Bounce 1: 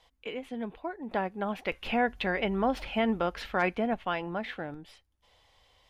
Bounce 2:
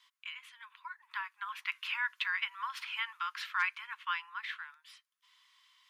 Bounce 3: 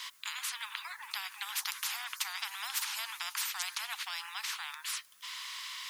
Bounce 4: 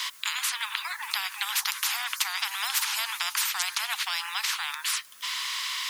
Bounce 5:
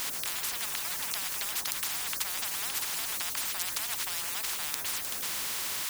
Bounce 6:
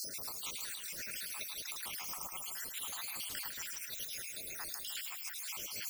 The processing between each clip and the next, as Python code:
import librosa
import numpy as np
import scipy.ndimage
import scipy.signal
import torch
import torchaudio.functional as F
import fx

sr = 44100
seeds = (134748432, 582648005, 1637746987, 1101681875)

y1 = scipy.signal.sosfilt(scipy.signal.butter(16, 990.0, 'highpass', fs=sr, output='sos'), x)
y2 = fx.high_shelf(y1, sr, hz=4200.0, db=6.0)
y2 = fx.spectral_comp(y2, sr, ratio=10.0)
y2 = F.gain(torch.from_numpy(y2), 2.0).numpy()
y3 = fx.band_squash(y2, sr, depth_pct=40)
y3 = F.gain(torch.from_numpy(y3), 8.5).numpy()
y4 = fx.spectral_comp(y3, sr, ratio=10.0)
y5 = fx.spec_dropout(y4, sr, seeds[0], share_pct=79)
y5 = fx.echo_split(y5, sr, split_hz=2300.0, low_ms=153, high_ms=107, feedback_pct=52, wet_db=-6.0)
y5 = fx.attack_slew(y5, sr, db_per_s=110.0)
y5 = F.gain(torch.from_numpy(y5), -3.0).numpy()